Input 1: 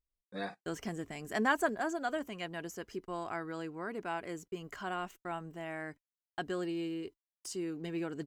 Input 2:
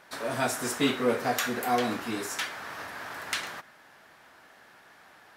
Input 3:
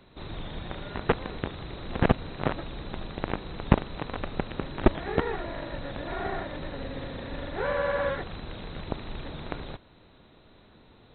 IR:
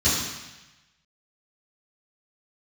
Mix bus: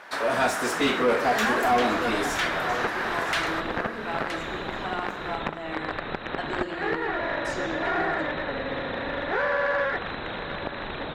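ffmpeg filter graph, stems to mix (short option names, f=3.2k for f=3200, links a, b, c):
-filter_complex "[0:a]volume=-5dB,asplit=2[a][b];[b]volume=-18dB[c];[1:a]volume=0dB,asplit=2[d][e];[e]volume=-14dB[f];[2:a]adynamicequalizer=threshold=0.00447:dfrequency=1700:dqfactor=1.9:tfrequency=1700:tqfactor=1.9:attack=5:release=100:ratio=0.375:range=3:mode=boostabove:tftype=bell,acompressor=threshold=-29dB:ratio=6,adelay=1750,volume=-0.5dB,asplit=2[g][h];[h]volume=-17dB[i];[3:a]atrim=start_sample=2205[j];[c][j]afir=irnorm=-1:irlink=0[k];[f][i]amix=inputs=2:normalize=0,aecho=0:1:971:1[l];[a][d][g][k][l]amix=inputs=5:normalize=0,asplit=2[m][n];[n]highpass=f=720:p=1,volume=19dB,asoftclip=type=tanh:threshold=-12.5dB[o];[m][o]amix=inputs=2:normalize=0,lowpass=f=1.9k:p=1,volume=-6dB"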